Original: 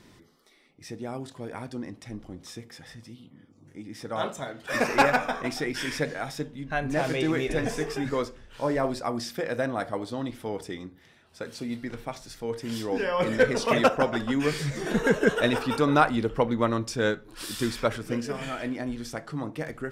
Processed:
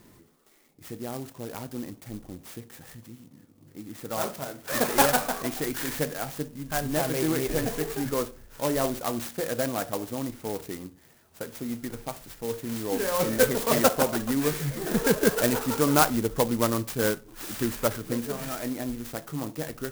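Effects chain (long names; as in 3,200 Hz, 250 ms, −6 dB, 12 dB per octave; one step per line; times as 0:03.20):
converter with an unsteady clock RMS 0.092 ms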